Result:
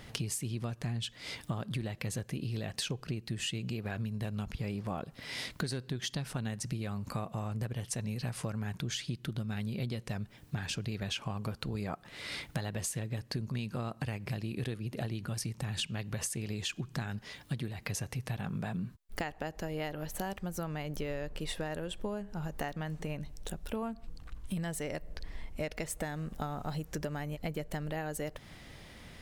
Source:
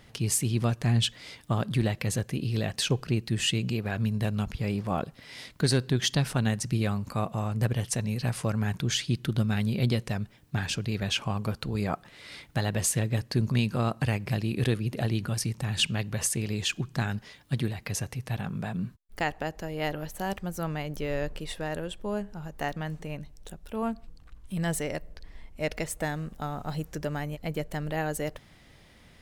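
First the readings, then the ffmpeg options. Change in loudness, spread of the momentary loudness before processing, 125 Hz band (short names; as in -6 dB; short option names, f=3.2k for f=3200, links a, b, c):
-8.0 dB, 9 LU, -8.0 dB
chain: -af "acompressor=threshold=-37dB:ratio=16,volume=4.5dB"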